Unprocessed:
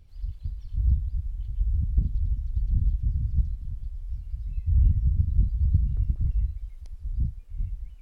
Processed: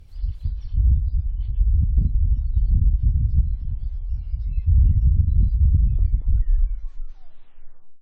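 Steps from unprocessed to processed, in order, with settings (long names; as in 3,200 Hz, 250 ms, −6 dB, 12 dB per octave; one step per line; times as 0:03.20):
turntable brake at the end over 2.32 s
boost into a limiter +15 dB
level −8 dB
WMA 128 kbit/s 48,000 Hz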